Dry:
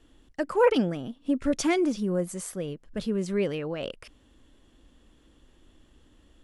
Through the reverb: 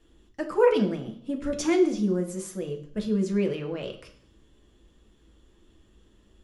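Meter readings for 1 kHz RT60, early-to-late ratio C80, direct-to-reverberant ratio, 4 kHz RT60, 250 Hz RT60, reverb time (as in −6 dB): 0.60 s, 14.5 dB, 1.5 dB, 0.70 s, 0.65 s, 0.60 s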